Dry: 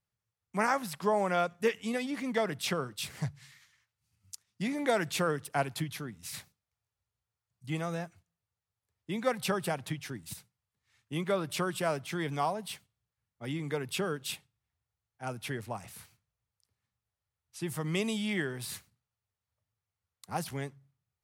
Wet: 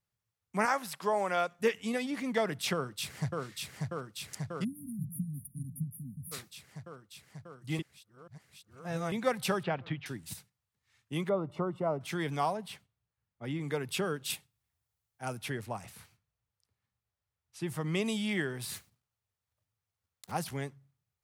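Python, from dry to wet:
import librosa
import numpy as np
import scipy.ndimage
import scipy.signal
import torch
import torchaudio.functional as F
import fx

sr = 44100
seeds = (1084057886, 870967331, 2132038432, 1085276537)

y = fx.highpass(x, sr, hz=410.0, slope=6, at=(0.65, 1.59))
y = fx.echo_throw(y, sr, start_s=2.73, length_s=0.68, ms=590, feedback_pct=80, wet_db=-2.5)
y = fx.brickwall_bandstop(y, sr, low_hz=270.0, high_hz=9300.0, at=(4.63, 6.31), fade=0.02)
y = fx.lowpass(y, sr, hz=3500.0, slope=24, at=(9.63, 10.06))
y = fx.savgol(y, sr, points=65, at=(11.29, 12.01))
y = fx.high_shelf(y, sr, hz=3800.0, db=-9.0, at=(12.57, 13.61))
y = fx.high_shelf(y, sr, hz=6700.0, db=8.0, at=(14.3, 15.39))
y = fx.high_shelf(y, sr, hz=4900.0, db=-6.0, at=(15.9, 18.06))
y = fx.block_float(y, sr, bits=3, at=(18.76, 20.33))
y = fx.edit(y, sr, fx.reverse_span(start_s=7.79, length_s=1.33), tone=tone)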